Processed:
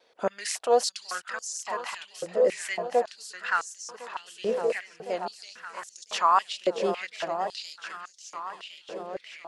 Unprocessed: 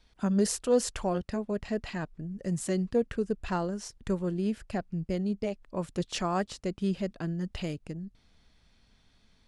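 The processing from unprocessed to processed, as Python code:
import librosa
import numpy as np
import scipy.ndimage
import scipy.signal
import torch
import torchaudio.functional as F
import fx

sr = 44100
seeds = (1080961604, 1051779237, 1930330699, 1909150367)

y = fx.level_steps(x, sr, step_db=24, at=(3.65, 4.26), fade=0.02)
y = fx.high_shelf(y, sr, hz=5800.0, db=-8.0)
y = fx.echo_swing(y, sr, ms=1058, ratio=1.5, feedback_pct=57, wet_db=-9.0)
y = fx.vibrato(y, sr, rate_hz=3.8, depth_cents=52.0)
y = fx.filter_held_highpass(y, sr, hz=3.6, low_hz=500.0, high_hz=6300.0)
y = y * 10.0 ** (4.5 / 20.0)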